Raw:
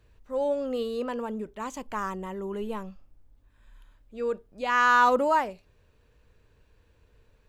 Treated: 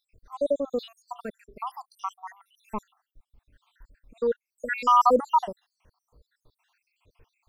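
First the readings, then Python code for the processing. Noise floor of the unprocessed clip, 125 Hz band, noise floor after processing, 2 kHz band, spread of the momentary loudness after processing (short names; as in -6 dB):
-64 dBFS, n/a, under -85 dBFS, -9.5 dB, 22 LU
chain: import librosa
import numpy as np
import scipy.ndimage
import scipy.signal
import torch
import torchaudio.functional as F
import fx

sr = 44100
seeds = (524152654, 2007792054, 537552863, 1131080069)

y = fx.spec_dropout(x, sr, seeds[0], share_pct=76)
y = y * librosa.db_to_amplitude(4.5)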